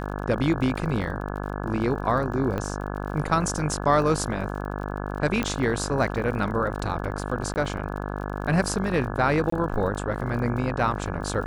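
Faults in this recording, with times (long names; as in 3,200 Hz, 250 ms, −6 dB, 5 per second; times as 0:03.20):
mains buzz 50 Hz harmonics 34 −31 dBFS
surface crackle 44 per second −35 dBFS
0:02.58: click −17 dBFS
0:05.43: click −12 dBFS
0:07.54–0:07.56: drop-out 19 ms
0:09.50–0:09.52: drop-out 24 ms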